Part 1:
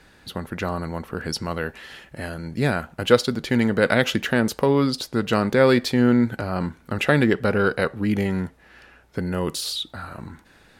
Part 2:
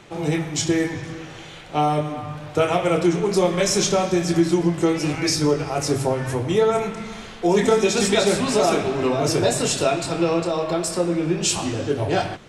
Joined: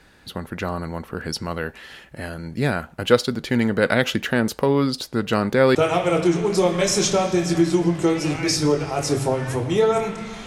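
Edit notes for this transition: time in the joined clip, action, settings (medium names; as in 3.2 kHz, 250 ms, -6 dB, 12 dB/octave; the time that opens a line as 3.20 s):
part 1
5.75 s: go over to part 2 from 2.54 s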